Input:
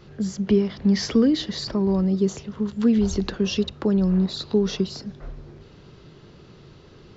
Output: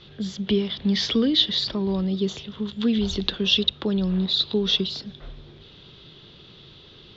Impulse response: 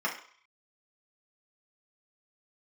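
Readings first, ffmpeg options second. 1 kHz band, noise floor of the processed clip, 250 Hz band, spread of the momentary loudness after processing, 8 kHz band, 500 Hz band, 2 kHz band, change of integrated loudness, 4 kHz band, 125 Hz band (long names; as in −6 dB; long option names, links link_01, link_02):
−2.5 dB, −49 dBFS, −3.5 dB, 11 LU, can't be measured, −3.5 dB, +3.5 dB, −0.5 dB, +10.5 dB, −3.5 dB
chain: -af "lowpass=frequency=3500:width_type=q:width=6.9,aemphasis=mode=production:type=50kf,volume=-3.5dB"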